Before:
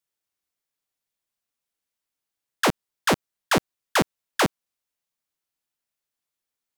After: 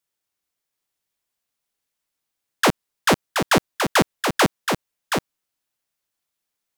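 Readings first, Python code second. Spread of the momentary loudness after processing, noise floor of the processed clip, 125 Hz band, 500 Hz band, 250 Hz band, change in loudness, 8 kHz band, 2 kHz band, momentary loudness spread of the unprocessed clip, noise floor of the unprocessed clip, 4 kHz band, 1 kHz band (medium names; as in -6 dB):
7 LU, -83 dBFS, +4.5 dB, +4.5 dB, +4.5 dB, +3.5 dB, +4.5 dB, +4.5 dB, 3 LU, under -85 dBFS, +4.5 dB, +4.5 dB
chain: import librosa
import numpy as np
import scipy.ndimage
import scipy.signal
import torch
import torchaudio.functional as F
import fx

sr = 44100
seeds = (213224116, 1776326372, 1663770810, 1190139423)

y = x + 10.0 ** (-5.5 / 20.0) * np.pad(x, (int(725 * sr / 1000.0), 0))[:len(x)]
y = y * librosa.db_to_amplitude(3.5)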